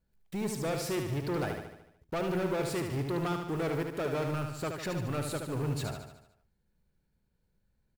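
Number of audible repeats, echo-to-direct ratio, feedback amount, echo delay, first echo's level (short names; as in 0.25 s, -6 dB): 6, -4.0 dB, 55%, 74 ms, -5.5 dB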